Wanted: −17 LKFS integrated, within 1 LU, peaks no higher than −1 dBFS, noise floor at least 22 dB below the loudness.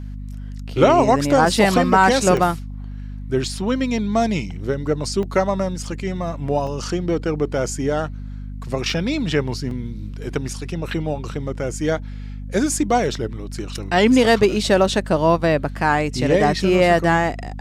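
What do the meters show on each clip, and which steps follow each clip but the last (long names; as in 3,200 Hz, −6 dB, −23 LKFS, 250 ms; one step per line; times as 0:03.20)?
number of dropouts 6; longest dropout 2.1 ms; mains hum 50 Hz; hum harmonics up to 250 Hz; level of the hum −28 dBFS; integrated loudness −19.5 LKFS; sample peak −2.5 dBFS; target loudness −17.0 LKFS
→ repair the gap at 0:02.37/0:05.23/0:05.87/0:06.67/0:08.90/0:09.71, 2.1 ms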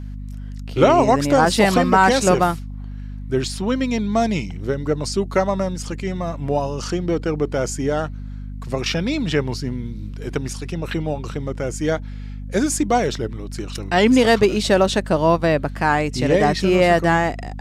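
number of dropouts 0; mains hum 50 Hz; hum harmonics up to 250 Hz; level of the hum −28 dBFS
→ hum removal 50 Hz, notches 5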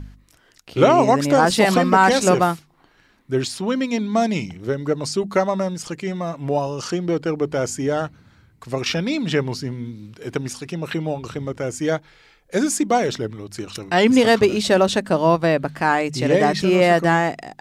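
mains hum none found; integrated loudness −20.0 LKFS; sample peak −2.5 dBFS; target loudness −17.0 LKFS
→ level +3 dB
brickwall limiter −1 dBFS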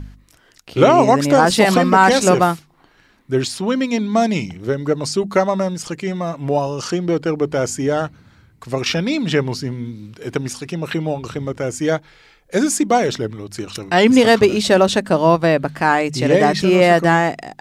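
integrated loudness −17.0 LKFS; sample peak −1.0 dBFS; background noise floor −54 dBFS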